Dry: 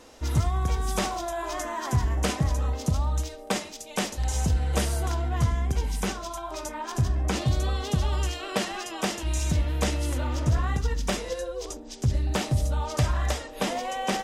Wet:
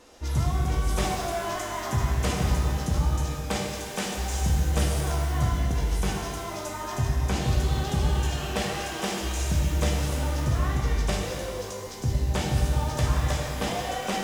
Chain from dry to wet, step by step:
0:11.14–0:11.86: elliptic high-pass filter 340 Hz
reverb with rising layers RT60 2.1 s, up +12 semitones, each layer −8 dB, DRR −0.5 dB
level −3.5 dB

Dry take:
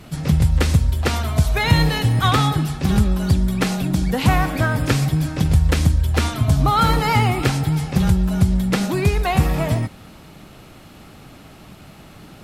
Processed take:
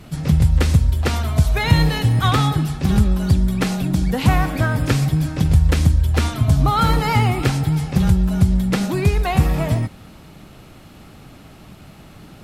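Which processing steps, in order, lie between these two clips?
low-shelf EQ 230 Hz +3.5 dB
level −1.5 dB

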